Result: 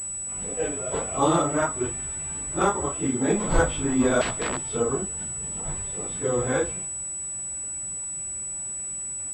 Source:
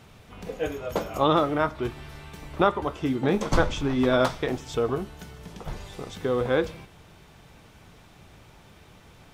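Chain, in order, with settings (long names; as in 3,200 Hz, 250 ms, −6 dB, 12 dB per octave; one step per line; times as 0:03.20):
random phases in long frames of 100 ms
0:04.21–0:04.76: wrap-around overflow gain 21.5 dB
switching amplifier with a slow clock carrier 7,900 Hz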